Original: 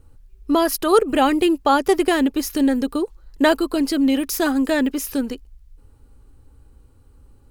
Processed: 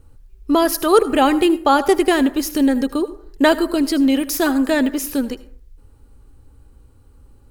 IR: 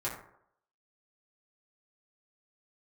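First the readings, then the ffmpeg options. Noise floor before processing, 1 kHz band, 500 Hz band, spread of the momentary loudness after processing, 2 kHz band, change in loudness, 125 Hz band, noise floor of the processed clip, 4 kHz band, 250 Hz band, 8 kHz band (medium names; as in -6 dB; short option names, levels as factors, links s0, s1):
-52 dBFS, +2.0 dB, +2.0 dB, 8 LU, +2.0 dB, +2.0 dB, no reading, -49 dBFS, +2.0 dB, +2.0 dB, +2.0 dB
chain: -filter_complex "[0:a]asplit=2[s0][s1];[s1]highshelf=f=6600:g=10[s2];[1:a]atrim=start_sample=2205,afade=t=out:st=0.33:d=0.01,atrim=end_sample=14994,adelay=75[s3];[s2][s3]afir=irnorm=-1:irlink=0,volume=0.0944[s4];[s0][s4]amix=inputs=2:normalize=0,volume=1.26"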